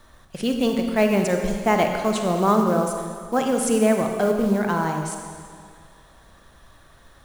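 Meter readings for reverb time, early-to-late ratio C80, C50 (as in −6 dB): 2.1 s, 5.5 dB, 4.5 dB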